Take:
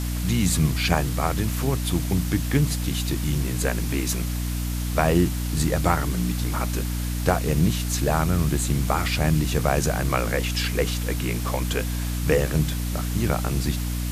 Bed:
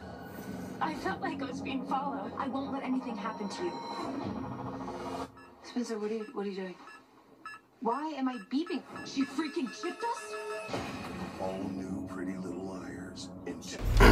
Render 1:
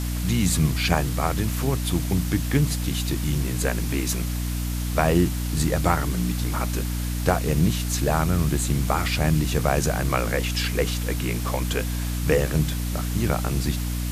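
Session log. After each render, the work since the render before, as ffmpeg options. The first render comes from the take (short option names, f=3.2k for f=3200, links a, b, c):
-af anull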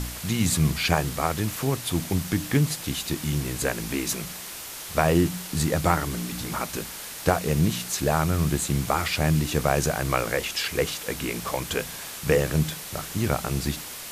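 -af "bandreject=f=60:t=h:w=4,bandreject=f=120:t=h:w=4,bandreject=f=180:t=h:w=4,bandreject=f=240:t=h:w=4,bandreject=f=300:t=h:w=4"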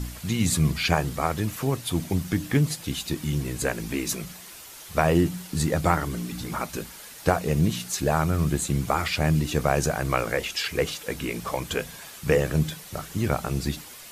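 -af "afftdn=nr=8:nf=-38"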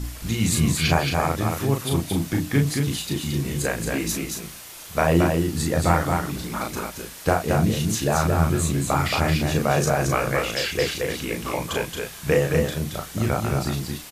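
-filter_complex "[0:a]asplit=2[a][b];[b]adelay=36,volume=-3.5dB[c];[a][c]amix=inputs=2:normalize=0,aecho=1:1:224:0.631"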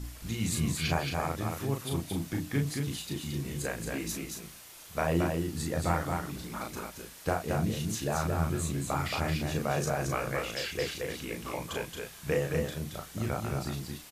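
-af "volume=-9.5dB"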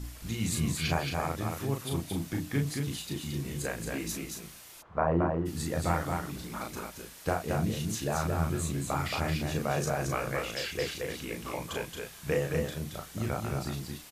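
-filter_complex "[0:a]asplit=3[a][b][c];[a]afade=t=out:st=4.81:d=0.02[d];[b]lowpass=f=1.1k:t=q:w=1.8,afade=t=in:st=4.81:d=0.02,afade=t=out:st=5.45:d=0.02[e];[c]afade=t=in:st=5.45:d=0.02[f];[d][e][f]amix=inputs=3:normalize=0"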